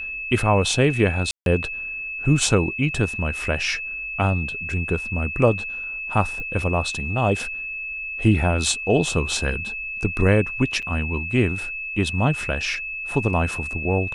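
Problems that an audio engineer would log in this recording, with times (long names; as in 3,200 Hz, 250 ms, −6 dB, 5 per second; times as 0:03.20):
whistle 2,600 Hz −28 dBFS
0:01.31–0:01.46: drop-out 152 ms
0:06.40: click −22 dBFS
0:10.82–0:10.83: drop-out 6.7 ms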